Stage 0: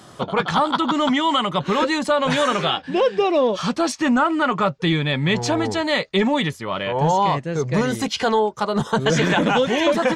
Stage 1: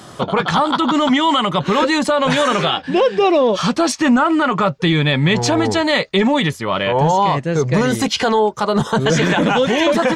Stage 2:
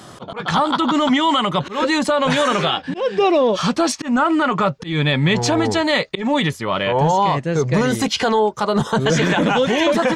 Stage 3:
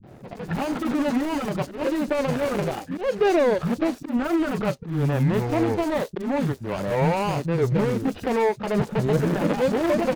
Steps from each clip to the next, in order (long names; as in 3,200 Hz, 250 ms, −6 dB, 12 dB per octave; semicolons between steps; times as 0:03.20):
boost into a limiter +12.5 dB; level −6 dB
volume swells 172 ms; level −1.5 dB
running median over 41 samples; pitch vibrato 0.74 Hz 49 cents; three-band delay without the direct sound lows, mids, highs 30/70 ms, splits 220/4,200 Hz; level −1.5 dB